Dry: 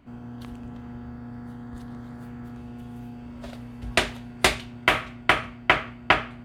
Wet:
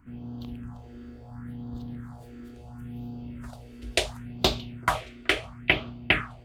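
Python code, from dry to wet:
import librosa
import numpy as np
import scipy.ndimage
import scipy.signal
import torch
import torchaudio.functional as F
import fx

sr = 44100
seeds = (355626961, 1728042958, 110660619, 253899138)

y = fx.echo_stepped(x, sr, ms=427, hz=150.0, octaves=1.4, feedback_pct=70, wet_db=-10.0)
y = fx.phaser_stages(y, sr, stages=4, low_hz=140.0, high_hz=1900.0, hz=0.72, feedback_pct=30)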